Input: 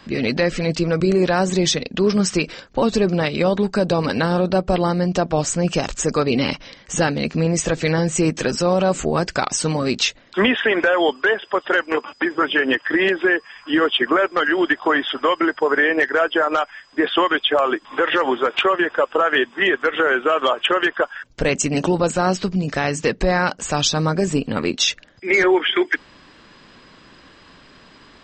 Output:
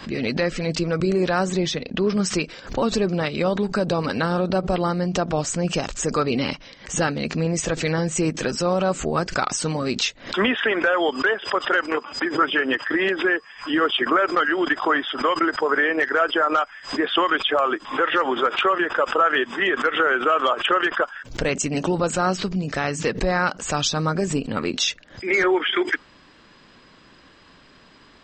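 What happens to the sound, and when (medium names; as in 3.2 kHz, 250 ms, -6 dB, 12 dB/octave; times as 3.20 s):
1.55–2.17 s: Bessel low-pass 4 kHz
whole clip: dynamic bell 1.3 kHz, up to +6 dB, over -34 dBFS, Q 4.1; swell ahead of each attack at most 140 dB/s; trim -4 dB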